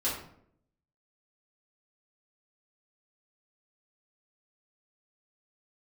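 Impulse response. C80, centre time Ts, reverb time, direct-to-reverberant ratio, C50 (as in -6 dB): 8.0 dB, 42 ms, 0.65 s, -9.0 dB, 4.0 dB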